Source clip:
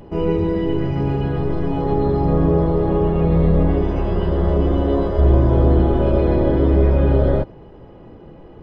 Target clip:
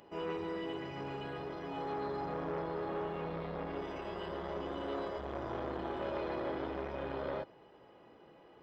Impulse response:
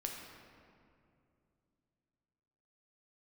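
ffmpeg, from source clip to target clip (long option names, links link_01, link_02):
-af "asoftclip=type=tanh:threshold=-14.5dB,highpass=frequency=1300:poles=1,volume=-6dB"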